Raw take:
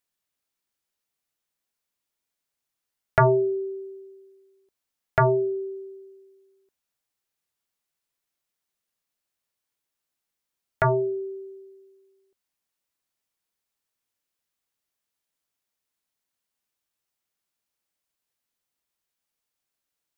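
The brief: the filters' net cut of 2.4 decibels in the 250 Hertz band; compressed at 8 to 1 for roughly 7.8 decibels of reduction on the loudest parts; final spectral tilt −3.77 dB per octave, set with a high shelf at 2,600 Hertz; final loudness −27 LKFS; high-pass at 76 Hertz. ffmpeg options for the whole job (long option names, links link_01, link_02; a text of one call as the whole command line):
ffmpeg -i in.wav -af "highpass=76,equalizer=frequency=250:width_type=o:gain=-6,highshelf=frequency=2600:gain=-7,acompressor=threshold=-23dB:ratio=8,volume=4dB" out.wav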